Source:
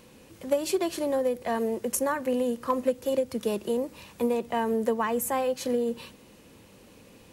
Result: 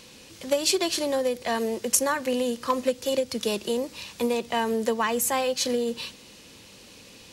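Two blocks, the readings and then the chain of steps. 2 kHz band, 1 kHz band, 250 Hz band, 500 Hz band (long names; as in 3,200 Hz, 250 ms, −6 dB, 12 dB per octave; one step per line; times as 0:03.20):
+5.5 dB, +2.0 dB, 0.0 dB, +0.5 dB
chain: parametric band 4,700 Hz +13.5 dB 2.2 octaves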